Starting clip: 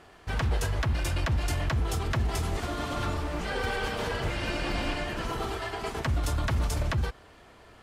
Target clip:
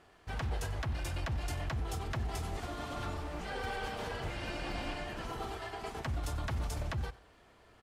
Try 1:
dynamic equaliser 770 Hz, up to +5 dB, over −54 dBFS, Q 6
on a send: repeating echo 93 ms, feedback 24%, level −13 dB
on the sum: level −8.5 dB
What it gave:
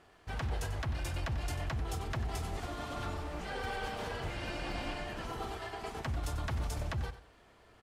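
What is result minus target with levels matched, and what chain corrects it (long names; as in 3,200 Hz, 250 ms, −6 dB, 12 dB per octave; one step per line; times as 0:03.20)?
echo-to-direct +6.5 dB
dynamic equaliser 770 Hz, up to +5 dB, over −54 dBFS, Q 6
on a send: repeating echo 93 ms, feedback 24%, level −19.5 dB
on the sum: level −8.5 dB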